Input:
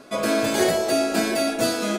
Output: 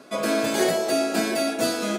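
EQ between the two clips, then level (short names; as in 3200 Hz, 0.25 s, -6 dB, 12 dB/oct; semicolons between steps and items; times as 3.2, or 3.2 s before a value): HPF 130 Hz 24 dB/oct; -1.5 dB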